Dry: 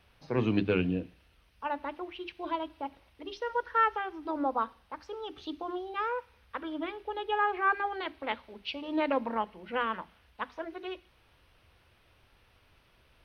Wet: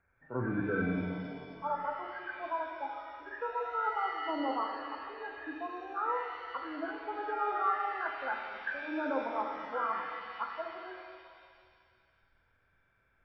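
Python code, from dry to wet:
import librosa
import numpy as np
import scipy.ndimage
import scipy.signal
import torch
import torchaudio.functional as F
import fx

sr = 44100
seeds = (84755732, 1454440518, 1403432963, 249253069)

p1 = fx.freq_compress(x, sr, knee_hz=1300.0, ratio=4.0)
p2 = fx.noise_reduce_blind(p1, sr, reduce_db=12)
p3 = fx.over_compress(p2, sr, threshold_db=-33.0, ratio=-1.0)
p4 = p2 + (p3 * 10.0 ** (0.5 / 20.0))
p5 = fx.rev_shimmer(p4, sr, seeds[0], rt60_s=2.1, semitones=7, shimmer_db=-8, drr_db=2.0)
y = p5 * 10.0 ** (-8.5 / 20.0)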